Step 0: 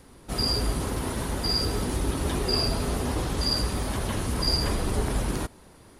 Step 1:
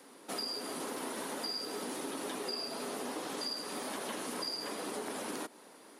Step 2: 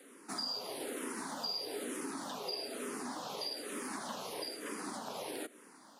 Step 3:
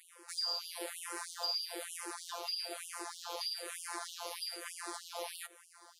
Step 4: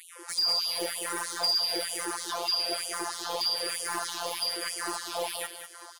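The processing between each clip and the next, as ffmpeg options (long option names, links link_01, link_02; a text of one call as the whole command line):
ffmpeg -i in.wav -af "highpass=frequency=260:width=0.5412,highpass=frequency=260:width=1.3066,bandreject=frequency=360:width=12,acompressor=threshold=-35dB:ratio=6,volume=-1dB" out.wav
ffmpeg -i in.wav -filter_complex "[0:a]asplit=2[link_01][link_02];[link_02]afreqshift=-1.1[link_03];[link_01][link_03]amix=inputs=2:normalize=1,volume=1dB" out.wav
ffmpeg -i in.wav -af "asoftclip=type=hard:threshold=-29dB,afftfilt=real='hypot(re,im)*cos(PI*b)':imag='0':win_size=1024:overlap=0.75,afftfilt=real='re*gte(b*sr/1024,320*pow(2800/320,0.5+0.5*sin(2*PI*3.2*pts/sr)))':imag='im*gte(b*sr/1024,320*pow(2800/320,0.5+0.5*sin(2*PI*3.2*pts/sr)))':win_size=1024:overlap=0.75,volume=5dB" out.wav
ffmpeg -i in.wav -af "aeval=exprs='0.106*sin(PI/2*2.24*val(0)/0.106)':channel_layout=same,aecho=1:1:198|396|594:0.355|0.0958|0.0259" out.wav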